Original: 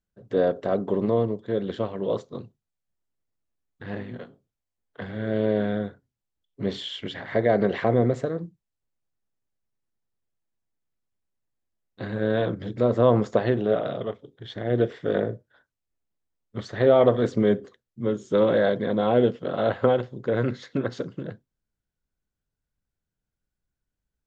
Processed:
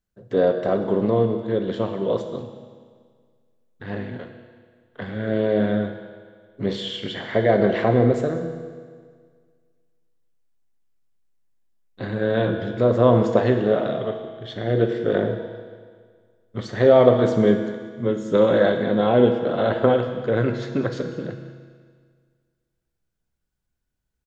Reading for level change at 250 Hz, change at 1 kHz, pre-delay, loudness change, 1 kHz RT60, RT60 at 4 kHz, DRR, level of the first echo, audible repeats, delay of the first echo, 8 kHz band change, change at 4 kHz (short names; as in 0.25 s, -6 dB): +4.0 dB, +3.5 dB, 6 ms, +3.5 dB, 1.8 s, 1.7 s, 4.5 dB, -18.0 dB, 1, 0.193 s, n/a, +4.0 dB